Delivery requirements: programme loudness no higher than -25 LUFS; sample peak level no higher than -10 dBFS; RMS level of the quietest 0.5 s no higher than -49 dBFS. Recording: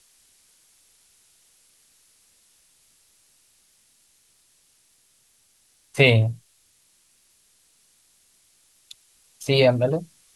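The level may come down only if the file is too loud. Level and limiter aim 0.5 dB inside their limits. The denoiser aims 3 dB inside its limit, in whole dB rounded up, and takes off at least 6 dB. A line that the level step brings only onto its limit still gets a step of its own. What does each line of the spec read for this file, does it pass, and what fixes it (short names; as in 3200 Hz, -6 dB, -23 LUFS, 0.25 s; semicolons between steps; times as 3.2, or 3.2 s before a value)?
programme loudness -20.5 LUFS: fail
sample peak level -2.0 dBFS: fail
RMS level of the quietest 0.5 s -62 dBFS: OK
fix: gain -5 dB; limiter -10.5 dBFS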